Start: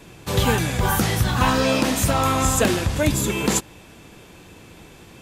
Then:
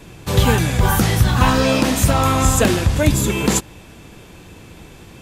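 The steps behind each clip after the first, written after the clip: low shelf 140 Hz +6 dB; gain +2.5 dB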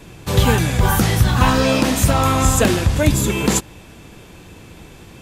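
nothing audible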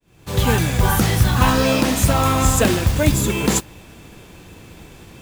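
opening faded in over 0.56 s; modulation noise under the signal 19 dB; gain -1 dB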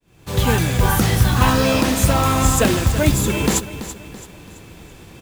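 feedback echo 0.333 s, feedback 42%, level -13 dB

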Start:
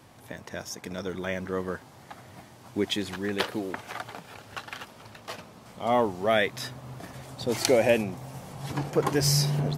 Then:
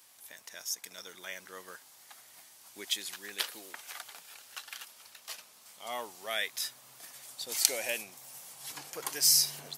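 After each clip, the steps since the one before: differentiator; gain +4.5 dB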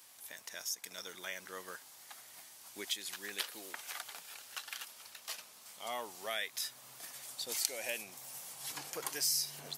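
compressor 2:1, threshold -39 dBFS, peak gain reduction 11.5 dB; gain +1 dB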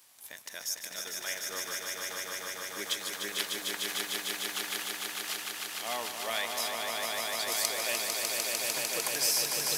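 sample leveller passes 1; swelling echo 0.15 s, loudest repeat 5, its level -4.5 dB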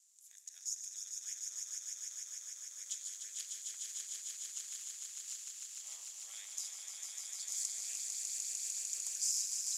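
on a send at -8.5 dB: reverb, pre-delay 3 ms; on the sum: ring modulator 100 Hz; band-pass 7000 Hz, Q 7.5; gain +5.5 dB

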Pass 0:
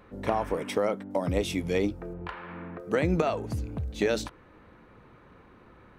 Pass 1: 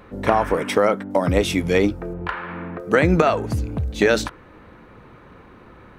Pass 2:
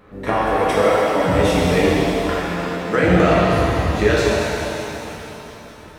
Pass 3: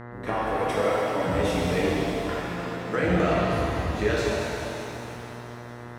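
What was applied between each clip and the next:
dynamic EQ 1500 Hz, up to +6 dB, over -46 dBFS, Q 1.6; gain +8.5 dB
shimmer reverb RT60 3.1 s, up +7 st, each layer -8 dB, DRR -6.5 dB; gain -5 dB
buzz 120 Hz, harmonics 17, -32 dBFS -4 dB/oct; gain -8.5 dB

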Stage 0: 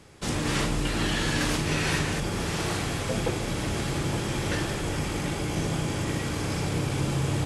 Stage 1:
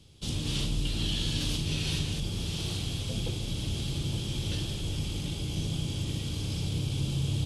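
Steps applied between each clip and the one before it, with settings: EQ curve 100 Hz 0 dB, 690 Hz -15 dB, 1900 Hz -20 dB, 3200 Hz +2 dB, 7300 Hz -7 dB, 10000 Hz -5 dB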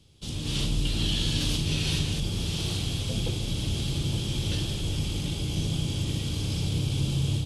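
AGC gain up to 6 dB; gain -2.5 dB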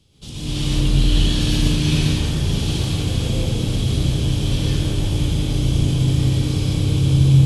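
plate-style reverb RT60 2.6 s, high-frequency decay 0.25×, pre-delay 95 ms, DRR -7.5 dB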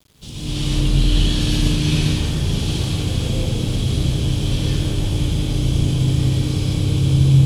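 bit-crush 9-bit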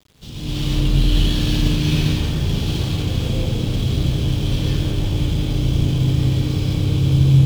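median filter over 5 samples

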